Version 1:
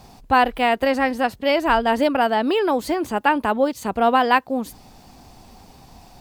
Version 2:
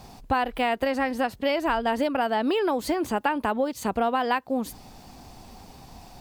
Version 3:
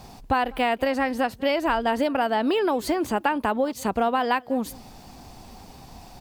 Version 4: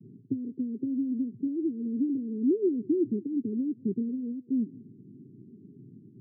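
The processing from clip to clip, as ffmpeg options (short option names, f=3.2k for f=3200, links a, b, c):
-af "acompressor=threshold=-21dB:ratio=6"
-filter_complex "[0:a]asplit=2[a][b];[b]adelay=198.3,volume=-25dB,highshelf=f=4k:g=-4.46[c];[a][c]amix=inputs=2:normalize=0,volume=1.5dB"
-af "asuperpass=centerf=210:order=20:qfactor=0.7"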